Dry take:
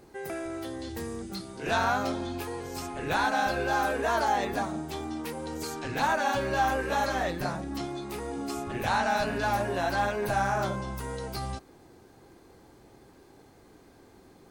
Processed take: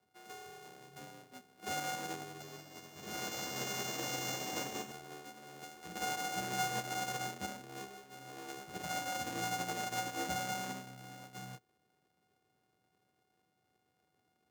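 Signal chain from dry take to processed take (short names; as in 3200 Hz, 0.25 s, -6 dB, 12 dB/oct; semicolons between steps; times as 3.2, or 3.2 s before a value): sample sorter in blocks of 64 samples; dynamic EQ 6600 Hz, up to +8 dB, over -54 dBFS, Q 4.1; limiter -20 dBFS, peak gain reduction 6.5 dB; frequency shift +61 Hz; 2.22–4.92 bouncing-ball echo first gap 0.19 s, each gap 0.85×, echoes 5; upward expander 2.5:1, over -40 dBFS; gain -4 dB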